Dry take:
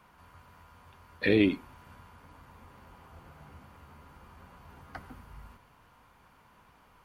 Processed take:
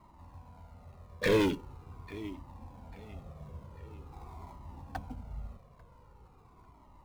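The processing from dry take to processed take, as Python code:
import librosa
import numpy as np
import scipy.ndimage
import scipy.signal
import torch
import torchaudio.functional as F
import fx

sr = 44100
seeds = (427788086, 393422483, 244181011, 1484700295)

p1 = fx.wiener(x, sr, points=25)
p2 = fx.peak_eq(p1, sr, hz=790.0, db=10.0, octaves=0.67, at=(4.12, 4.53))
p3 = p2 + fx.echo_feedback(p2, sr, ms=844, feedback_pct=41, wet_db=-23, dry=0)
p4 = 10.0 ** (-24.5 / 20.0) * np.tanh(p3 / 10.0 ** (-24.5 / 20.0))
p5 = fx.sample_hold(p4, sr, seeds[0], rate_hz=3000.0, jitter_pct=20)
p6 = p4 + F.gain(torch.from_numpy(p5), -9.0).numpy()
p7 = fx.comb_cascade(p6, sr, direction='falling', hz=0.44)
y = F.gain(torch.from_numpy(p7), 7.0).numpy()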